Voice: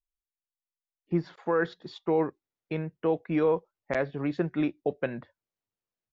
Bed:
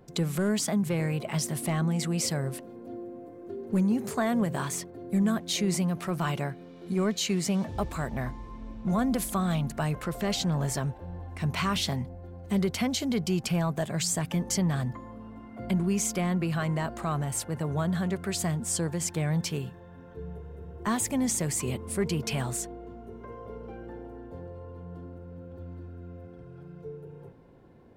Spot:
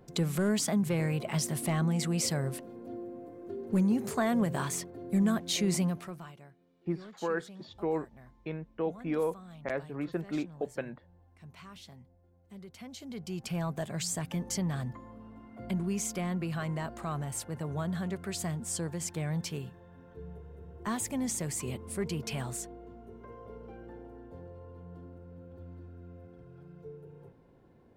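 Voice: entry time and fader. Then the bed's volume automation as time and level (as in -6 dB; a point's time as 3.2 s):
5.75 s, -6.0 dB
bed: 5.87 s -1.5 dB
6.35 s -22 dB
12.62 s -22 dB
13.63 s -5.5 dB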